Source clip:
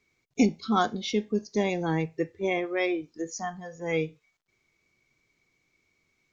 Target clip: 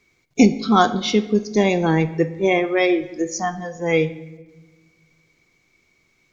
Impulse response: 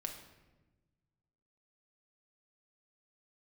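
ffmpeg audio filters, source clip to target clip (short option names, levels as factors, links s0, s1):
-filter_complex "[0:a]asplit=2[s0][s1];[1:a]atrim=start_sample=2205,asetrate=41895,aresample=44100[s2];[s1][s2]afir=irnorm=-1:irlink=0,volume=0.708[s3];[s0][s3]amix=inputs=2:normalize=0,volume=1.88"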